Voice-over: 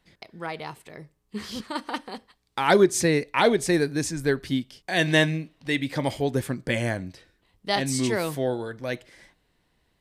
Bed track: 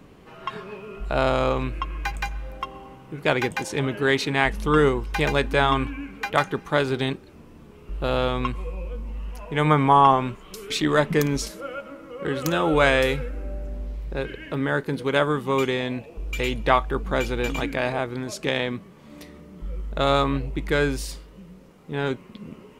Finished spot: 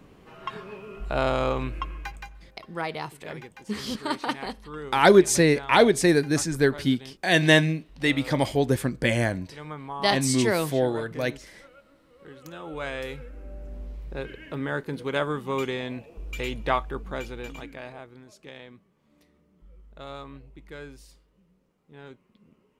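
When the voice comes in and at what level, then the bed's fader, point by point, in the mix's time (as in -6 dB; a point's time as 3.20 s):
2.35 s, +2.5 dB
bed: 1.86 s -3 dB
2.52 s -19.5 dB
12.40 s -19.5 dB
13.79 s -5.5 dB
16.75 s -5.5 dB
18.33 s -19.5 dB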